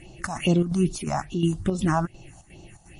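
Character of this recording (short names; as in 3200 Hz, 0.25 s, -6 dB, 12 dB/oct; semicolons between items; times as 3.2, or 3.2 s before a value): phasing stages 4, 2.4 Hz, lowest notch 360–1900 Hz; chopped level 2.8 Hz, depth 60%, duty 75%; a quantiser's noise floor 12-bit, dither none; MP3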